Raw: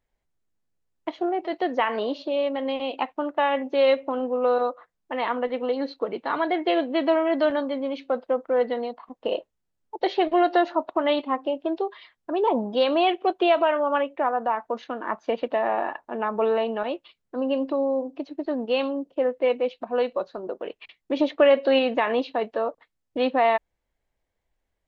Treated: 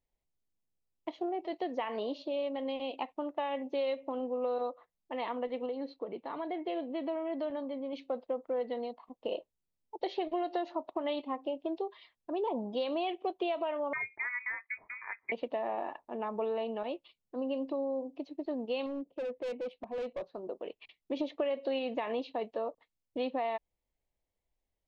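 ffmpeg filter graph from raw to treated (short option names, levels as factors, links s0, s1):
-filter_complex "[0:a]asettb=1/sr,asplit=3[s0][s1][s2];[s0]atrim=end=5.664[s3];[s1]atrim=start=5.66:end=7.93,asetpts=PTS-STARTPTS,afade=t=in:d=0.004:c=qsin,afade=t=out:st=2.266:d=0.004:c=qsin,lowpass=f=2500:p=1,acompressor=threshold=0.0316:ratio=1.5:attack=3.2:release=140:knee=1:detection=peak[s4];[s2]atrim=start=7.926[s5];[s3][s4]acrossfade=d=0.004:c1=hsin:c2=qsin[s6];[s6][s5]acrossfade=d=0.004:c1=qsin:c2=hsin,asettb=1/sr,asplit=3[s7][s8][s9];[s7]atrim=end=13.934[s10];[s8]atrim=start=13.93:end=15.32,asetpts=PTS-STARTPTS,afade=t=in:d=0.004:c=qsin,afade=t=out:st=1.386:d=0.004:c=qsin,highpass=350,lowpass=f=2300:t=q:w=0.5098,lowpass=f=2300:t=q:w=0.6013,lowpass=f=2300:t=q:w=0.9,lowpass=f=2300:t=q:w=2.563,afreqshift=-2700[s11];[s9]atrim=start=15.316[s12];[s10][s11]acrossfade=d=0.004:c1=hsin:c2=qsin[s13];[s13][s12]acrossfade=d=0.004:c1=qsin:c2=hsin,asettb=1/sr,asplit=3[s14][s15][s16];[s14]atrim=end=18.864[s17];[s15]atrim=start=18.86:end=20.35,asetpts=PTS-STARTPTS,afade=t=in:d=0.004:c=qsin,afade=t=out:st=1.486:d=0.004:c=qsin,volume=18.8,asoftclip=hard,volume=0.0531,adynamicsmooth=sensitivity=2.5:basefreq=3300[s18];[s16]atrim=start=20.346[s19];[s17][s18]acrossfade=d=0.004:c1=hsin:c2=qsin[s20];[s20][s19]acrossfade=d=0.004:c1=qsin:c2=hsin,equalizer=f=1500:t=o:w=0.58:g=-10.5,acompressor=threshold=0.0794:ratio=6,volume=0.422"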